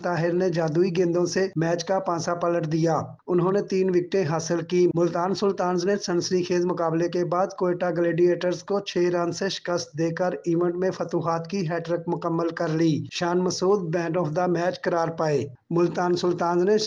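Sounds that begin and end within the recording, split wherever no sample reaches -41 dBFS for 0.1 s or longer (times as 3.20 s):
3.28–15.55 s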